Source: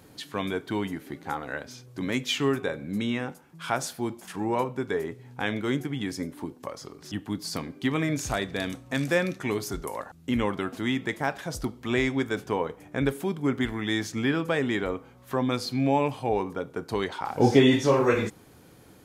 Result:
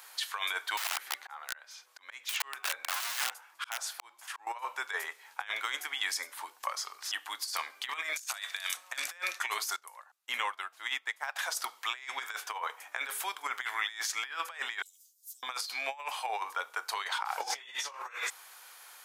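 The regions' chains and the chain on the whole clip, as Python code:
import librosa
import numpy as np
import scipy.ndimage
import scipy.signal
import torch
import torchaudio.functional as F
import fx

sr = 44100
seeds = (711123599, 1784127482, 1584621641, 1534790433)

y = fx.chain(x, sr, fx.high_shelf(hz=4800.0, db=-6.0),
    fx.auto_swell(attack_ms=508.0),
    fx.overflow_wrap(gain_db=30.0), at=(0.77, 4.47))
y = fx.chain(y, sr, fx.highpass(hz=1100.0, slope=6),
    fx.high_shelf(hz=4700.0, db=7.0), at=(8.13, 8.77))
y = fx.chain(y, sr, fx.low_shelf(hz=260.0, db=7.0),
    fx.upward_expand(threshold_db=-33.0, expansion=2.5), at=(9.76, 11.36))
y = fx.chain(y, sr, fx.cheby2_bandstop(low_hz=250.0, high_hz=2000.0, order=4, stop_db=60),
    fx.robotise(hz=367.0),
    fx.sustainer(db_per_s=110.0), at=(14.82, 15.43))
y = scipy.signal.sosfilt(scipy.signal.butter(4, 930.0, 'highpass', fs=sr, output='sos'), y)
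y = fx.high_shelf(y, sr, hz=8000.0, db=3.0)
y = fx.over_compress(y, sr, threshold_db=-38.0, ratio=-0.5)
y = F.gain(torch.from_numpy(y), 3.5).numpy()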